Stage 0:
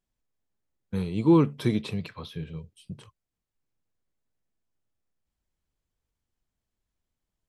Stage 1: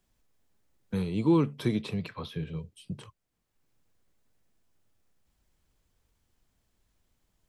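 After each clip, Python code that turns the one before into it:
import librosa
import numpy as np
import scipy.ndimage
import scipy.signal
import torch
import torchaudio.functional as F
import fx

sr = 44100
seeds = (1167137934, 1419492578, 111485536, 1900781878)

y = fx.band_squash(x, sr, depth_pct=40)
y = F.gain(torch.from_numpy(y), -1.5).numpy()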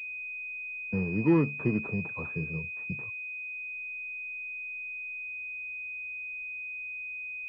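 y = fx.pwm(x, sr, carrier_hz=2500.0)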